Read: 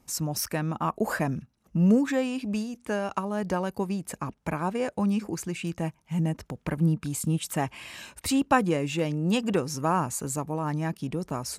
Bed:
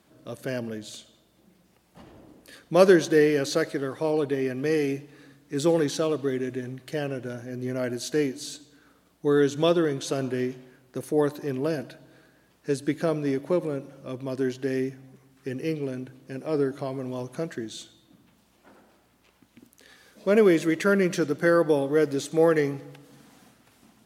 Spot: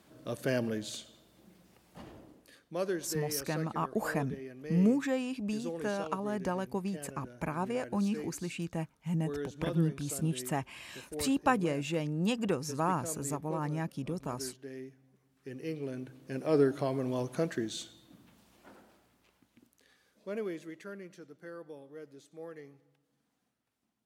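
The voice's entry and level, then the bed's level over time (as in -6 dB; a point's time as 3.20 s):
2.95 s, -5.5 dB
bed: 2.08 s 0 dB
2.81 s -17 dB
15.00 s -17 dB
16.46 s -0.5 dB
18.63 s -0.5 dB
21.15 s -25.5 dB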